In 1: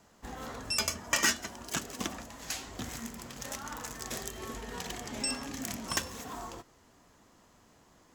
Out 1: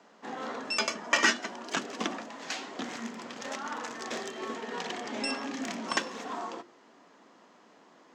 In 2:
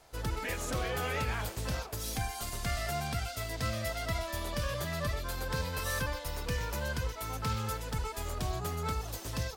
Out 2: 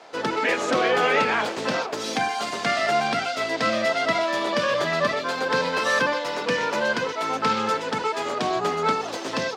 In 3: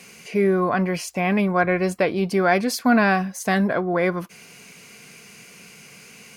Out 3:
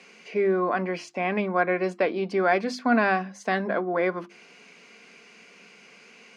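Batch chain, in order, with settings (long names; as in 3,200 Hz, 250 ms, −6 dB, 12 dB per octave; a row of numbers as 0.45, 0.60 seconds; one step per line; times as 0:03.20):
high-pass filter 220 Hz 24 dB per octave
high-frequency loss of the air 140 metres
mains-hum notches 50/100/150/200/250/300/350 Hz
normalise the peak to −9 dBFS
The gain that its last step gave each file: +6.5, +15.5, −2.5 decibels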